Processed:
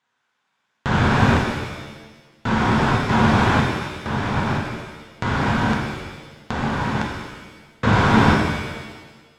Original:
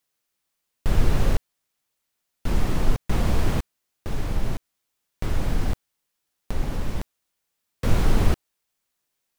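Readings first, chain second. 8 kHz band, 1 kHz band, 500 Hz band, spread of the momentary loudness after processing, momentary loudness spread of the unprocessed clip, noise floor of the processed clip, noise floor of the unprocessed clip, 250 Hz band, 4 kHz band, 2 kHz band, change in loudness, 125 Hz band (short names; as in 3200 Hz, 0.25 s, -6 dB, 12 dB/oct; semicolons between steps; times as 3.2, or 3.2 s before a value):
+2.5 dB, +16.0 dB, +9.0 dB, 17 LU, 13 LU, -73 dBFS, -79 dBFS, +11.0 dB, +10.5 dB, +16.0 dB, +8.0 dB, +6.0 dB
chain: median filter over 9 samples; speaker cabinet 130–7100 Hz, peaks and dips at 340 Hz -7 dB, 550 Hz -6 dB, 960 Hz +7 dB, 1500 Hz +8 dB, 3600 Hz +4 dB; shimmer reverb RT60 1.3 s, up +7 st, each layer -8 dB, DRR -0.5 dB; gain +8.5 dB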